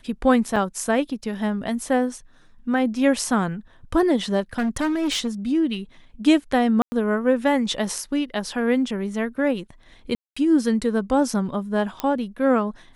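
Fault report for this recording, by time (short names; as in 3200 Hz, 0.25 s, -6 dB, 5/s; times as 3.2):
0.56 gap 3.6 ms
4.58–5.28 clipped -19.5 dBFS
6.82–6.92 gap 0.1 s
10.15–10.37 gap 0.215 s
12 pop -10 dBFS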